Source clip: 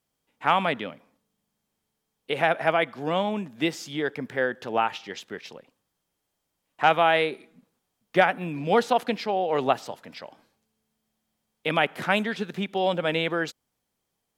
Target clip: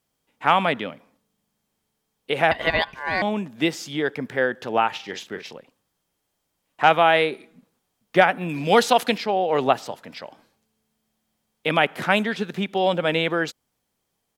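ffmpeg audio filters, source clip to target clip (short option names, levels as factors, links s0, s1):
-filter_complex "[0:a]asettb=1/sr,asplit=3[s0][s1][s2];[s0]atrim=end=2.514[s3];[s1]atrim=start=2.51:end=3.22,asetpts=PTS-STARTPTS,afade=t=in:d=0.004:c=qsin,afade=t=out:st=0.706:d=0.004:c=qsin,aeval=exprs='val(0)*sin(2*PI*1300*n/s)':c=same[s4];[s2]atrim=start=3.216[s5];[s3][s4]acrossfade=d=0.004:c1=hsin:c2=qsin[s6];[s6][s5]acrossfade=d=0.004:c1=qsin:c2=hsin,asplit=3[s7][s8][s9];[s7]afade=t=out:st=4.93:d=0.02[s10];[s8]asplit=2[s11][s12];[s12]adelay=43,volume=0.355[s13];[s11][s13]amix=inputs=2:normalize=0,afade=t=in:st=4.93:d=0.02,afade=t=out:st=5.5:d=0.02[s14];[s9]afade=t=in:st=5.5:d=0.02[s15];[s10][s14][s15]amix=inputs=3:normalize=0,asettb=1/sr,asplit=3[s16][s17][s18];[s16]atrim=end=8.494[s19];[s17]atrim=start=8.49:end=9.18,asetpts=PTS-STARTPTS,afade=t=in:d=0.004:c=qsin,afade=t=out:st=0.686:d=0.004:c=qsin,highshelf=f=2400:g=10[s20];[s18]atrim=start=9.176[s21];[s19][s20]acrossfade=d=0.004:c1=hsin:c2=qsin[s22];[s22][s21]acrossfade=d=0.004:c1=qsin:c2=hsin,volume=1.5"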